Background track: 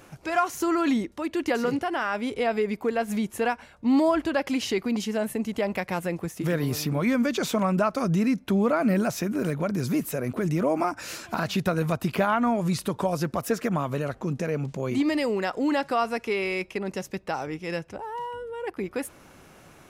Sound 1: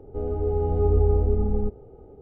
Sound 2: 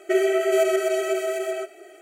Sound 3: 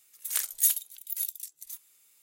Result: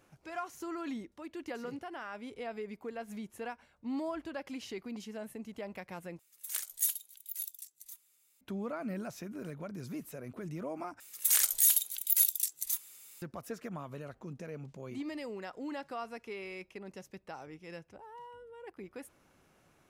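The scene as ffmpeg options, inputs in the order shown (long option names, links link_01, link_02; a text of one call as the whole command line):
ffmpeg -i bed.wav -i cue0.wav -i cue1.wav -i cue2.wav -filter_complex "[3:a]asplit=2[link_01][link_02];[0:a]volume=-15.5dB[link_03];[link_02]alimiter=level_in=21dB:limit=-1dB:release=50:level=0:latency=1[link_04];[link_03]asplit=3[link_05][link_06][link_07];[link_05]atrim=end=6.194[link_08];[link_01]atrim=end=2.22,asetpts=PTS-STARTPTS,volume=-7.5dB[link_09];[link_06]atrim=start=8.406:end=11.004[link_10];[link_04]atrim=end=2.22,asetpts=PTS-STARTPTS,volume=-12.5dB[link_11];[link_07]atrim=start=13.216[link_12];[link_08][link_09]acrossfade=duration=0.004:curve1=hsin:curve2=hsin[link_13];[link_13][link_10]acrossfade=duration=0.004:curve1=hsin:curve2=hsin[link_14];[link_14][link_11]acrossfade=duration=0.004:curve1=hsin:curve2=hsin[link_15];[link_15][link_12]acrossfade=duration=0.004:curve1=hsin:curve2=hsin" out.wav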